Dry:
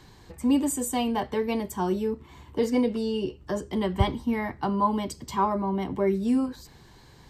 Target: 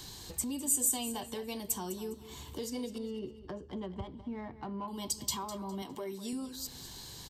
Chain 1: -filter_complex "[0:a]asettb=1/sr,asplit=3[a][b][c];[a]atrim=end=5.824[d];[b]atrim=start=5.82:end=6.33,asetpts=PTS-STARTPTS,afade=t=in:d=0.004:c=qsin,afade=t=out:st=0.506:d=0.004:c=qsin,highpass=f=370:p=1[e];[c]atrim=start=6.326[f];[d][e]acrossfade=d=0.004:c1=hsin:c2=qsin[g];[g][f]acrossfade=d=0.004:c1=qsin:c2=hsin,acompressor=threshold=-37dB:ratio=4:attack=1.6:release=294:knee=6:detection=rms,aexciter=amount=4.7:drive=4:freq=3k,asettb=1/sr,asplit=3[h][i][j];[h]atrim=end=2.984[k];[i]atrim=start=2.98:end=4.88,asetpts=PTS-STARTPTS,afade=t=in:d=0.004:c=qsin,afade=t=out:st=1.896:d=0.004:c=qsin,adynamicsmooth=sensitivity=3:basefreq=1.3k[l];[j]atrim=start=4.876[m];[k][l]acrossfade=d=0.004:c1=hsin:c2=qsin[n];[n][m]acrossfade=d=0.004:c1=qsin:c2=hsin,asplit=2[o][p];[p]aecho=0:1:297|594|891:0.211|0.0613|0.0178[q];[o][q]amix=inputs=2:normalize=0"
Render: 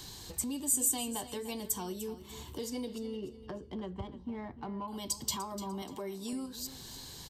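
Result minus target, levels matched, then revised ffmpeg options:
echo 93 ms late
-filter_complex "[0:a]asettb=1/sr,asplit=3[a][b][c];[a]atrim=end=5.824[d];[b]atrim=start=5.82:end=6.33,asetpts=PTS-STARTPTS,afade=t=in:d=0.004:c=qsin,afade=t=out:st=0.506:d=0.004:c=qsin,highpass=f=370:p=1[e];[c]atrim=start=6.326[f];[d][e]acrossfade=d=0.004:c1=hsin:c2=qsin[g];[g][f]acrossfade=d=0.004:c1=qsin:c2=hsin,acompressor=threshold=-37dB:ratio=4:attack=1.6:release=294:knee=6:detection=rms,aexciter=amount=4.7:drive=4:freq=3k,asettb=1/sr,asplit=3[h][i][j];[h]atrim=end=2.984[k];[i]atrim=start=2.98:end=4.88,asetpts=PTS-STARTPTS,afade=t=in:d=0.004:c=qsin,afade=t=out:st=1.896:d=0.004:c=qsin,adynamicsmooth=sensitivity=3:basefreq=1.3k[l];[j]atrim=start=4.876[m];[k][l]acrossfade=d=0.004:c1=hsin:c2=qsin[n];[n][m]acrossfade=d=0.004:c1=qsin:c2=hsin,asplit=2[o][p];[p]aecho=0:1:204|408|612:0.211|0.0613|0.0178[q];[o][q]amix=inputs=2:normalize=0"

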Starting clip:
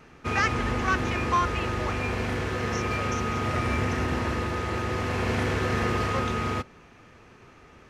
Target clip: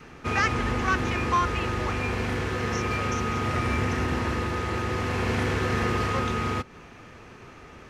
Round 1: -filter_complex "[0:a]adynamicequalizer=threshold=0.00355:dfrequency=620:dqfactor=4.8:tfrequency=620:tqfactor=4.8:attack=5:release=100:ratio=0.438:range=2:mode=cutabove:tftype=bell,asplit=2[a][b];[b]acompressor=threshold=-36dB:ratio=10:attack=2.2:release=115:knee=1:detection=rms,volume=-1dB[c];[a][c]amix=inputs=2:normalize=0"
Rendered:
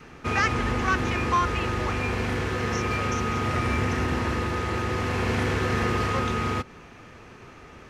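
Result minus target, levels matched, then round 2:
compressor: peak gain reduction -7 dB
-filter_complex "[0:a]adynamicequalizer=threshold=0.00355:dfrequency=620:dqfactor=4.8:tfrequency=620:tqfactor=4.8:attack=5:release=100:ratio=0.438:range=2:mode=cutabove:tftype=bell,asplit=2[a][b];[b]acompressor=threshold=-44dB:ratio=10:attack=2.2:release=115:knee=1:detection=rms,volume=-1dB[c];[a][c]amix=inputs=2:normalize=0"

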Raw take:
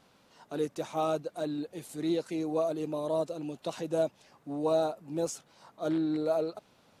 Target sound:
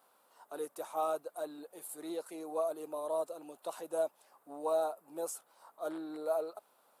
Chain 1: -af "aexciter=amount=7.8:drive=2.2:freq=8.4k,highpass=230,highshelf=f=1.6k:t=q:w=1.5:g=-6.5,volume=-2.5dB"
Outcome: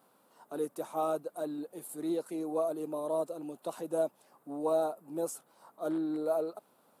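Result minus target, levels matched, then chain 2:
250 Hz band +6.5 dB
-af "aexciter=amount=7.8:drive=2.2:freq=8.4k,highpass=570,highshelf=f=1.6k:t=q:w=1.5:g=-6.5,volume=-2.5dB"

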